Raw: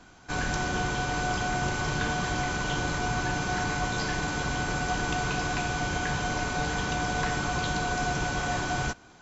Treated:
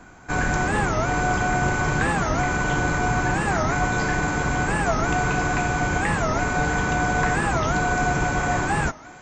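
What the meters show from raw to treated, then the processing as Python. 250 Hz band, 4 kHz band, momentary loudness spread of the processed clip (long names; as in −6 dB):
+7.0 dB, −2.0 dB, 1 LU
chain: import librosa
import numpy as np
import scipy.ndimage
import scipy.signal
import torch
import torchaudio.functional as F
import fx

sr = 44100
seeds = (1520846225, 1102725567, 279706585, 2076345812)

p1 = fx.band_shelf(x, sr, hz=4100.0, db=-9.5, octaves=1.3)
p2 = p1 + fx.echo_thinned(p1, sr, ms=357, feedback_pct=84, hz=340.0, wet_db=-23.5, dry=0)
p3 = fx.record_warp(p2, sr, rpm=45.0, depth_cents=250.0)
y = p3 * 10.0 ** (7.0 / 20.0)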